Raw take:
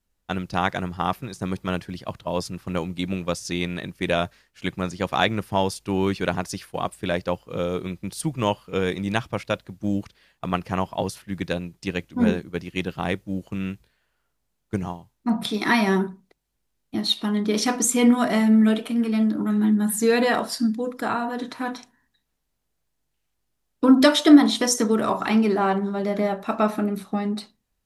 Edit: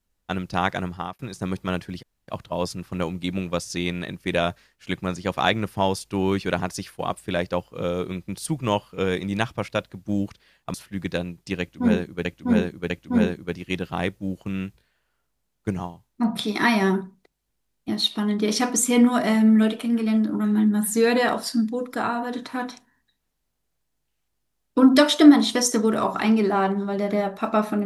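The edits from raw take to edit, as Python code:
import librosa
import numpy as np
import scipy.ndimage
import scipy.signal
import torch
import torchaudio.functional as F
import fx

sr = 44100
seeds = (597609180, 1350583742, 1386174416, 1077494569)

y = fx.edit(x, sr, fx.fade_out_span(start_s=0.88, length_s=0.31),
    fx.insert_room_tone(at_s=2.03, length_s=0.25),
    fx.cut(start_s=10.49, length_s=0.61),
    fx.repeat(start_s=11.96, length_s=0.65, count=3), tone=tone)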